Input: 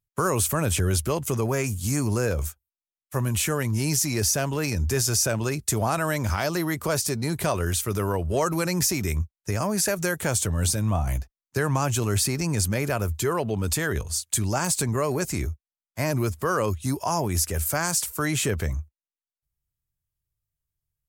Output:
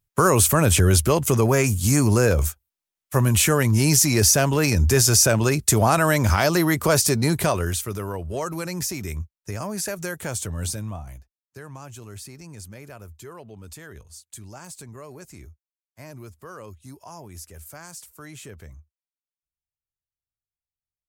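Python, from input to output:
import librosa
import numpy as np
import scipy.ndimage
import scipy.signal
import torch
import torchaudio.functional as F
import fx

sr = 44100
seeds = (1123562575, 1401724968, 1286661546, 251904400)

y = fx.gain(x, sr, db=fx.line((7.27, 6.5), (8.03, -4.5), (10.75, -4.5), (11.2, -16.0)))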